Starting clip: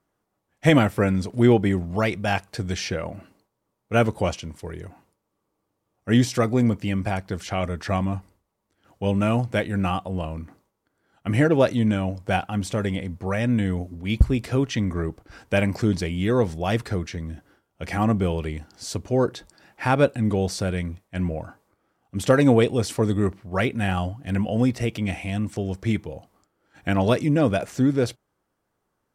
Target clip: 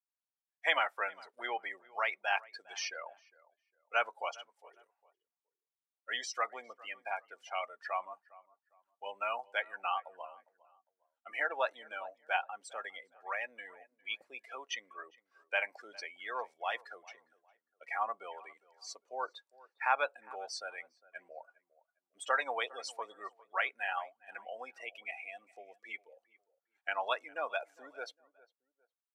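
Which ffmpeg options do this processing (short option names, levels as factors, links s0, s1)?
-filter_complex "[0:a]afftdn=nr=25:nf=-30,highpass=f=810:w=0.5412,highpass=f=810:w=1.3066,asplit=2[s0][s1];[s1]adelay=406,lowpass=f=1600:p=1,volume=0.0944,asplit=2[s2][s3];[s3]adelay=406,lowpass=f=1600:p=1,volume=0.31[s4];[s0][s2][s4]amix=inputs=3:normalize=0,volume=0.631"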